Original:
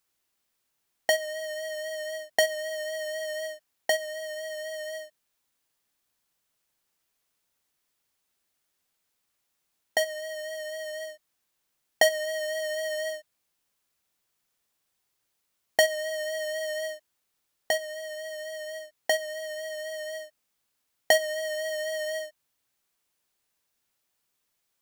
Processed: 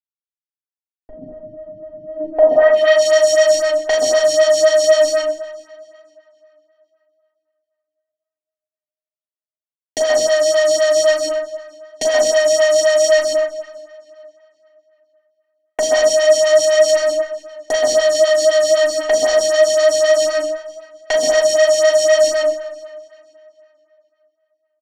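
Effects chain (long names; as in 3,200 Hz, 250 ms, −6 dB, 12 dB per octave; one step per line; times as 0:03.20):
low-shelf EQ 200 Hz +5 dB
mains-hum notches 60/120/180/240/300/360/420/480/540 Hz
in parallel at +0.5 dB: compressor whose output falls as the input rises −33 dBFS
on the sum: hollow resonant body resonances 290/3,900 Hz, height 14 dB, ringing for 40 ms
fuzz pedal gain 38 dB, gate −37 dBFS
low-pass filter sweep 170 Hz → 6,600 Hz, 0:02.02–0:03.04
double-tracking delay 37 ms −6 dB
on a send: tape delay 450 ms, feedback 39%, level −19 dB, low-pass 4,700 Hz
on the sum: dense smooth reverb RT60 0.85 s, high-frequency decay 0.55×, pre-delay 115 ms, DRR −1 dB
phaser with staggered stages 3.9 Hz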